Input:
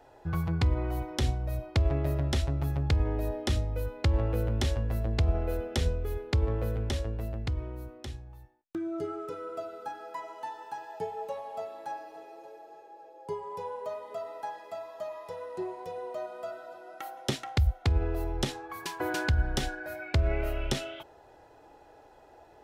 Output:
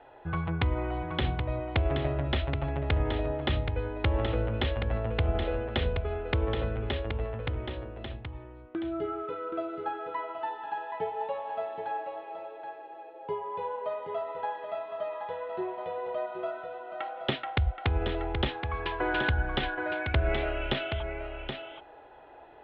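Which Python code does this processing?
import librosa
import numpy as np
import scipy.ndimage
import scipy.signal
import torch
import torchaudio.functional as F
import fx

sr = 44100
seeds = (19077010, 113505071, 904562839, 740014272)

y = scipy.signal.sosfilt(scipy.signal.butter(8, 3500.0, 'lowpass', fs=sr, output='sos'), x)
y = fx.low_shelf(y, sr, hz=360.0, db=-8.0)
y = y + 10.0 ** (-7.0 / 20.0) * np.pad(y, (int(775 * sr / 1000.0), 0))[:len(y)]
y = y * 10.0 ** (5.0 / 20.0)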